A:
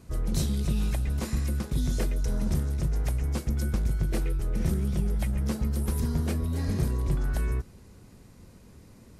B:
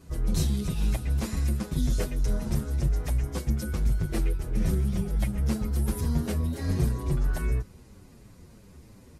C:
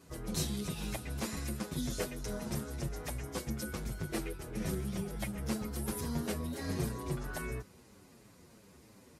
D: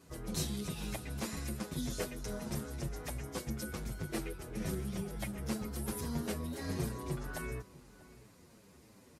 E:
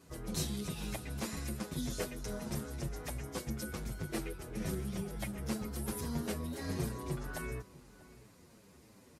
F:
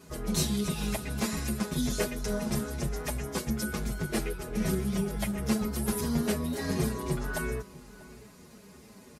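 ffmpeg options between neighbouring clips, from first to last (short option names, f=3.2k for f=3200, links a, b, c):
-filter_complex "[0:a]asplit=2[a][b];[b]adelay=7.5,afreqshift=-3[c];[a][c]amix=inputs=2:normalize=1,volume=3.5dB"
-af "highpass=f=310:p=1,volume=-1.5dB"
-filter_complex "[0:a]asplit=2[a][b];[b]adelay=641.4,volume=-19dB,highshelf=f=4k:g=-14.4[c];[a][c]amix=inputs=2:normalize=0,volume=-1.5dB"
-af anull
-af "aecho=1:1:4.8:0.47,volume=7dB"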